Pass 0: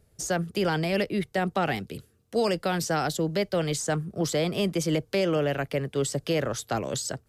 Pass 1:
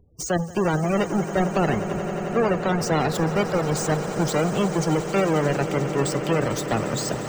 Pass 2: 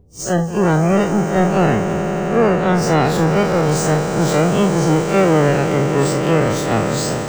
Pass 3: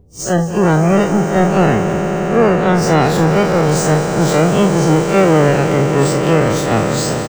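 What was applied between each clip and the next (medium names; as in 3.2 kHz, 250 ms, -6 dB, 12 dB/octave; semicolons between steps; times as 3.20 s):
square wave that keeps the level; spectral gate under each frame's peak -20 dB strong; echo with a slow build-up 89 ms, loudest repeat 8, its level -16 dB
spectral blur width 88 ms; trim +9 dB
delay 205 ms -16 dB; trim +2.5 dB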